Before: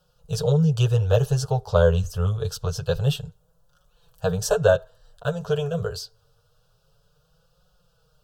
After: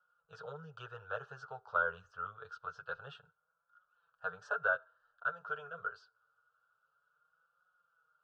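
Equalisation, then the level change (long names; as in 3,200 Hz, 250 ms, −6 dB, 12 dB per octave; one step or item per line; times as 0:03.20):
resonant band-pass 1,400 Hz, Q 9.1
high-frequency loss of the air 110 metres
+4.5 dB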